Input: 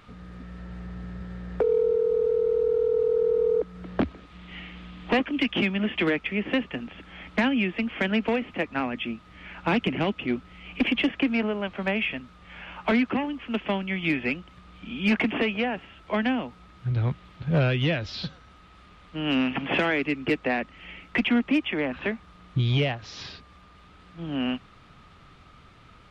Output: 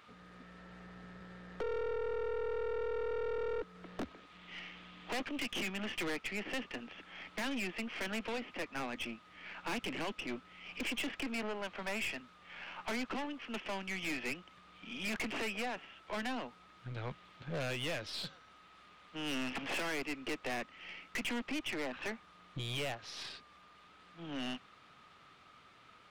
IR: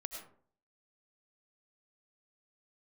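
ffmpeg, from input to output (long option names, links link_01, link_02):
-af "highpass=frequency=520:poles=1,aeval=exprs='(tanh(39.8*val(0)+0.5)-tanh(0.5))/39.8':channel_layout=same,volume=-2.5dB"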